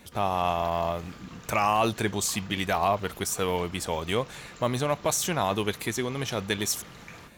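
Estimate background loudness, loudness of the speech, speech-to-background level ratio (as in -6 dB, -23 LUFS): -46.5 LUFS, -28.0 LUFS, 18.5 dB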